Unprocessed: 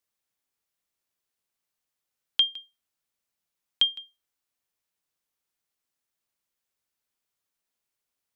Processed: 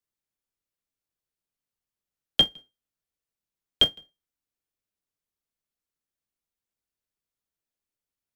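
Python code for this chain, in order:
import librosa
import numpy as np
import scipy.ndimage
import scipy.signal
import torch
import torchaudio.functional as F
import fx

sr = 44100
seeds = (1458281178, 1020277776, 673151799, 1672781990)

p1 = fx.low_shelf(x, sr, hz=88.0, db=10.0)
p2 = fx.sample_hold(p1, sr, seeds[0], rate_hz=1100.0, jitter_pct=20)
p3 = p1 + (p2 * librosa.db_to_amplitude(-11.5))
p4 = fx.upward_expand(p3, sr, threshold_db=-39.0, expansion=1.5)
y = p4 * librosa.db_to_amplitude(3.0)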